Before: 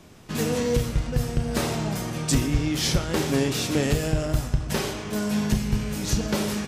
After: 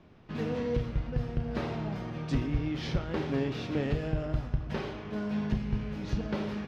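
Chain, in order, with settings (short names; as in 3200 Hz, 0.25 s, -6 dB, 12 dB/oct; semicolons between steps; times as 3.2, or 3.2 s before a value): air absorption 290 m; gain -6.5 dB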